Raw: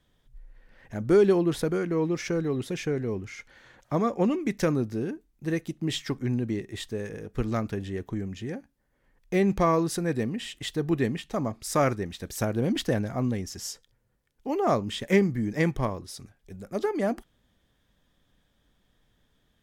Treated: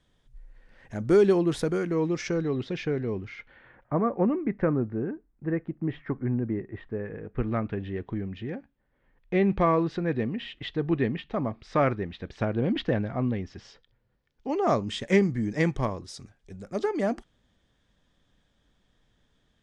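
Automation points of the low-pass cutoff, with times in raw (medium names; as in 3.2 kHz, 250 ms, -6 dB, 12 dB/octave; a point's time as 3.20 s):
low-pass 24 dB/octave
1.87 s 10 kHz
2.66 s 4.6 kHz
3.23 s 4.6 kHz
3.93 s 1.8 kHz
6.81 s 1.8 kHz
8.06 s 3.5 kHz
13.69 s 3.5 kHz
14.89 s 8.3 kHz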